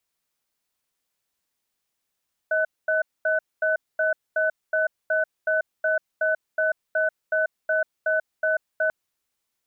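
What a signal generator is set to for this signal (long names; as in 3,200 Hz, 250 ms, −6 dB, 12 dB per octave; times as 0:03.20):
tone pair in a cadence 632 Hz, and 1,500 Hz, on 0.14 s, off 0.23 s, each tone −22 dBFS 6.39 s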